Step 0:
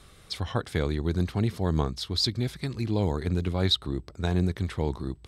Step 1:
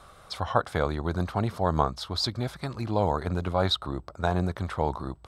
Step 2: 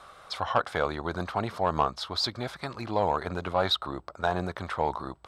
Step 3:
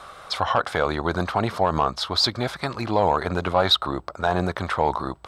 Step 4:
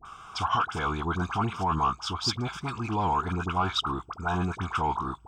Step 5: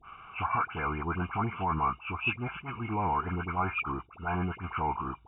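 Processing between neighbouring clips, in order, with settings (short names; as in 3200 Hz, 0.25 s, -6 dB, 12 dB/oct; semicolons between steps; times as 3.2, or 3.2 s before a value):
band shelf 890 Hz +12 dB; gain -2.5 dB
overdrive pedal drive 13 dB, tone 3800 Hz, clips at -5.5 dBFS; gain -4 dB
limiter -16.5 dBFS, peak gain reduction 6.5 dB; gain +8 dB
fixed phaser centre 2800 Hz, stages 8; dispersion highs, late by 54 ms, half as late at 1200 Hz; gain -1.5 dB
nonlinear frequency compression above 2100 Hz 4:1; attack slew limiter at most 210 dB/s; gain -3 dB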